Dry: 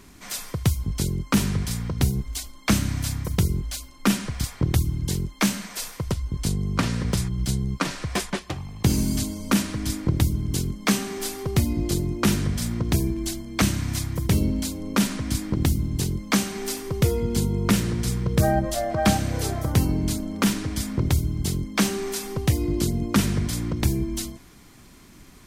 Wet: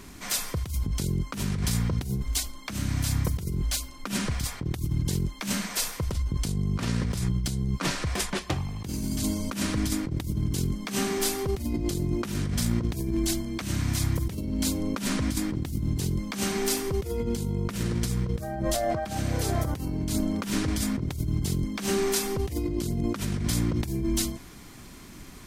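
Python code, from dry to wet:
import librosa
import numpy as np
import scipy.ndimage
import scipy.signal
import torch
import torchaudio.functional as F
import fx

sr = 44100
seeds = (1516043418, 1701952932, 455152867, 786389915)

y = fx.over_compress(x, sr, threshold_db=-28.0, ratio=-1.0)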